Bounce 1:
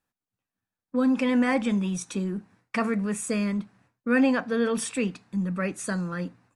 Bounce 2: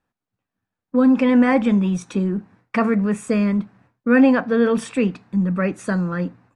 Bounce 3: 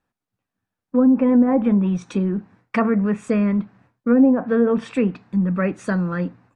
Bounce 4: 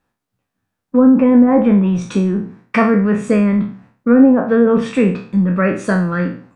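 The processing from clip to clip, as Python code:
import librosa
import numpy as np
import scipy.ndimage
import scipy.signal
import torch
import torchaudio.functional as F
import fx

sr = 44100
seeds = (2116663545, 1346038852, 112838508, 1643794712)

y1 = fx.lowpass(x, sr, hz=1700.0, slope=6)
y1 = y1 * 10.0 ** (8.0 / 20.0)
y2 = fx.env_lowpass_down(y1, sr, base_hz=560.0, full_db=-10.5)
y3 = fx.spec_trails(y2, sr, decay_s=0.45)
y3 = y3 * 10.0 ** (5.0 / 20.0)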